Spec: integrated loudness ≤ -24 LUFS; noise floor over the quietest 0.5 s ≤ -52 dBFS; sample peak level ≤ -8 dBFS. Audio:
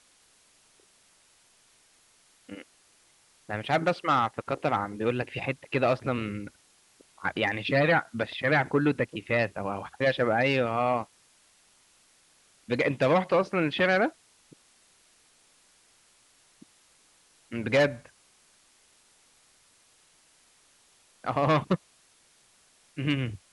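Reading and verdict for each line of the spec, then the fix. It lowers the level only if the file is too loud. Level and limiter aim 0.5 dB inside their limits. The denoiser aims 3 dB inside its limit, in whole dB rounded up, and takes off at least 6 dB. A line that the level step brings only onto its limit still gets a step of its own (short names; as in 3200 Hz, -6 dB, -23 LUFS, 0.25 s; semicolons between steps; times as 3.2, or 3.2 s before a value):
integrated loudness -27.5 LUFS: OK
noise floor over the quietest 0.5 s -63 dBFS: OK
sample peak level -13.0 dBFS: OK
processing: none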